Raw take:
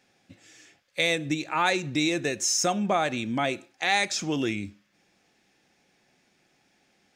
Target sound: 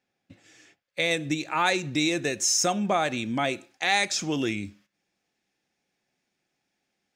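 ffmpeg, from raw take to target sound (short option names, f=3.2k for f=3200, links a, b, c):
-af "agate=range=-13dB:threshold=-56dB:ratio=16:detection=peak,asetnsamples=n=441:p=0,asendcmd='1.11 highshelf g 2.5',highshelf=f=4.1k:g=-5.5"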